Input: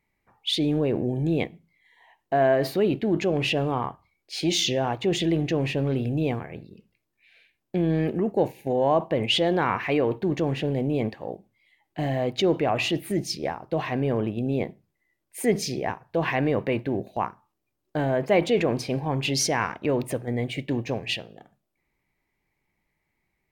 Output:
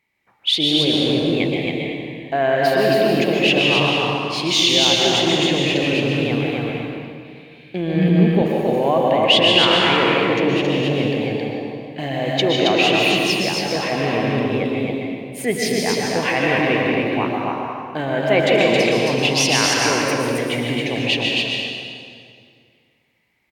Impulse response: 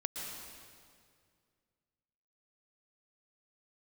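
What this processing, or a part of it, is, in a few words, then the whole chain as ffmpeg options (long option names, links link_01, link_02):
stadium PA: -filter_complex "[0:a]highpass=frequency=150:poles=1,equalizer=frequency=3000:width_type=o:width=1.6:gain=8,aecho=1:1:151.6|271.1:0.355|0.794[link_01];[1:a]atrim=start_sample=2205[link_02];[link_01][link_02]afir=irnorm=-1:irlink=0,asettb=1/sr,asplit=3[link_03][link_04][link_05];[link_03]atrim=end=7.964[link_06];[link_04]atrim=start=7.96:end=8.42,asetpts=PTS-STARTPTS,afade=type=in:duration=0.004:curve=qsin,afade=type=out:start_time=0.456:duration=0.004:curve=qsin,equalizer=frequency=180:width_type=o:width=0.28:gain=13.5[link_07];[link_05]atrim=start=8.416[link_08];[link_06][link_07]acrossfade=duration=0.004:curve1=hsin:curve2=qsin[link_09];[link_09][link_08]acrossfade=duration=0.004:curve1=qsin:curve2=hsin,volume=2.5dB"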